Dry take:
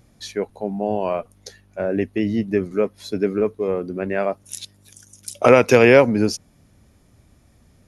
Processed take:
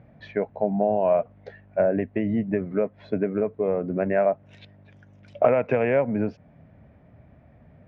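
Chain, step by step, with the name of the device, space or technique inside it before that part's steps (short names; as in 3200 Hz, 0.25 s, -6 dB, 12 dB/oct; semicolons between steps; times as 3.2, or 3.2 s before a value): bass amplifier (compressor 6:1, threshold -23 dBFS, peak gain reduction 15 dB; speaker cabinet 69–2200 Hz, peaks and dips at 150 Hz +5 dB, 350 Hz -5 dB, 640 Hz +8 dB, 1200 Hz -5 dB); gain +3 dB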